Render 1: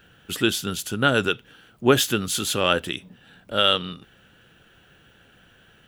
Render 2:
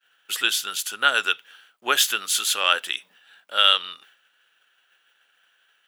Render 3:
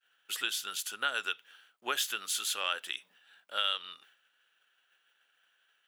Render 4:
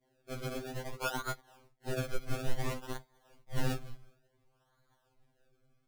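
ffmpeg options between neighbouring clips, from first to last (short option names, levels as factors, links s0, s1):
-af "agate=range=0.0224:threshold=0.00447:ratio=3:detection=peak,highpass=1100,volume=1.5"
-af "acompressor=threshold=0.0708:ratio=2,volume=0.398"
-af "acrusher=samples=32:mix=1:aa=0.000001:lfo=1:lforange=32:lforate=0.57,asubboost=boost=6:cutoff=86,afftfilt=real='re*2.45*eq(mod(b,6),0)':imag='im*2.45*eq(mod(b,6),0)':win_size=2048:overlap=0.75"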